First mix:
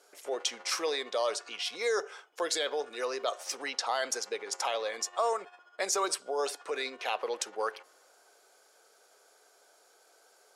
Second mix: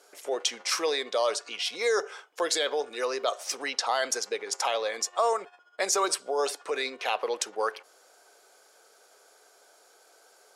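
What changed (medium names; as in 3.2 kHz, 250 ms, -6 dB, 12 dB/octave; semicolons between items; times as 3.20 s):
speech +4.0 dB; background: send -6.0 dB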